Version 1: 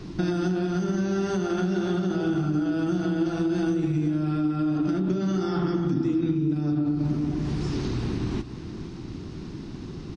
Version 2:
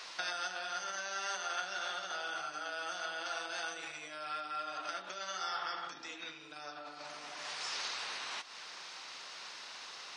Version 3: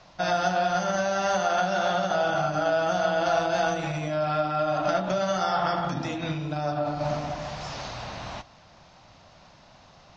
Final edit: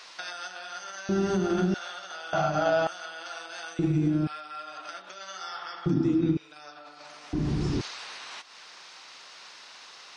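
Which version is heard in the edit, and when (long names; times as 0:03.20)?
2
0:01.09–0:01.74: punch in from 1
0:02.33–0:02.87: punch in from 3
0:03.79–0:04.27: punch in from 1
0:05.86–0:06.37: punch in from 1
0:07.33–0:07.81: punch in from 1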